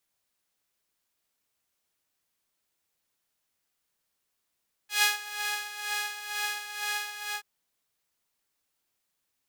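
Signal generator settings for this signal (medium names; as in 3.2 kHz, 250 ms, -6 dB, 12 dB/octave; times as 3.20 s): synth patch with tremolo G#5, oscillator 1 saw, sub -7 dB, noise -17 dB, filter highpass, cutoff 1.2 kHz, Q 0.99, filter envelope 1 oct, attack 147 ms, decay 0.14 s, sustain -10 dB, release 0.10 s, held 2.43 s, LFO 2.1 Hz, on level 10.5 dB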